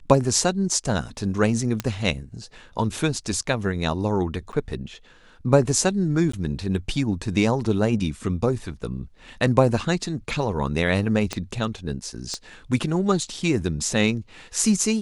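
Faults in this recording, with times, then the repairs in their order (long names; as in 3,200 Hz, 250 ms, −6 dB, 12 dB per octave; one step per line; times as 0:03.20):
0:01.80: click −10 dBFS
0:04.52–0:04.53: drop-out 9.4 ms
0:06.32–0:06.33: drop-out 14 ms
0:11.33: click −12 dBFS
0:12.34: click −17 dBFS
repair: click removal
repair the gap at 0:04.52, 9.4 ms
repair the gap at 0:06.32, 14 ms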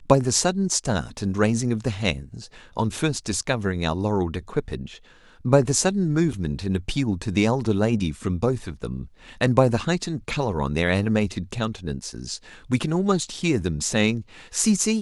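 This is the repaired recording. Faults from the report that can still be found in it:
0:11.33: click
0:12.34: click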